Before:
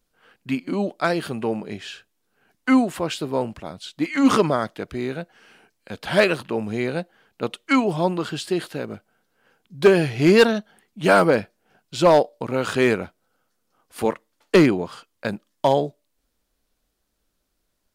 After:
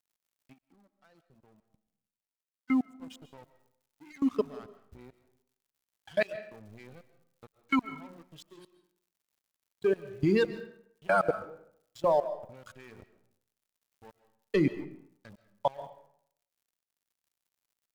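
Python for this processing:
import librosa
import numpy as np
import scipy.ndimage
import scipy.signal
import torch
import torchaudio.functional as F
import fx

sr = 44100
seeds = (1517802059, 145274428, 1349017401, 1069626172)

y = fx.bin_expand(x, sr, power=2.0)
y = scipy.signal.sosfilt(scipy.signal.butter(2, 9800.0, 'lowpass', fs=sr, output='sos'), y)
y = fx.high_shelf(y, sr, hz=2900.0, db=-8.0)
y = fx.hum_notches(y, sr, base_hz=60, count=9)
y = fx.level_steps(y, sr, step_db=23)
y = fx.dmg_crackle(y, sr, seeds[0], per_s=380.0, level_db=-53.0)
y = np.sign(y) * np.maximum(np.abs(y) - 10.0 ** (-51.0 / 20.0), 0.0)
y = fx.rev_freeverb(y, sr, rt60_s=0.66, hf_ratio=0.7, predelay_ms=95, drr_db=13.5)
y = fx.upward_expand(y, sr, threshold_db=-46.0, expansion=1.5, at=(0.52, 3.01), fade=0.02)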